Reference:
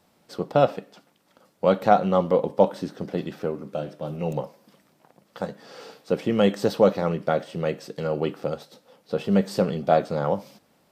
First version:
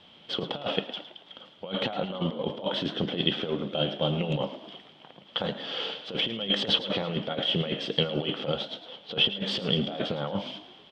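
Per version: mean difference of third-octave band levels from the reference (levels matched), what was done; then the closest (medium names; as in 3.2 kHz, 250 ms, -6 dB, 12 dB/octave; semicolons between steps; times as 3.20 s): 8.5 dB: peak limiter -14 dBFS, peak gain reduction 11 dB; compressor with a negative ratio -29 dBFS, ratio -0.5; resonant low-pass 3.2 kHz, resonance Q 14; on a send: frequency-shifting echo 109 ms, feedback 50%, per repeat +55 Hz, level -13.5 dB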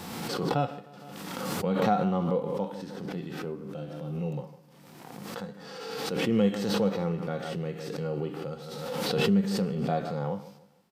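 6.0 dB: peaking EQ 600 Hz -10 dB 0.25 oct; on a send: feedback delay 154 ms, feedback 37%, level -18 dB; on the sum: harmonic-percussive split percussive -13 dB; swell ahead of each attack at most 30 dB/s; trim -2.5 dB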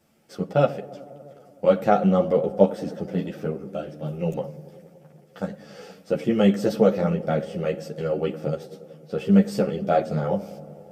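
3.0 dB: graphic EQ with 31 bands 160 Hz +5 dB, 1 kHz -11 dB, 4 kHz -8 dB; feedback echo behind a low-pass 94 ms, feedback 81%, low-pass 780 Hz, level -17 dB; three-phase chorus; trim +3 dB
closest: third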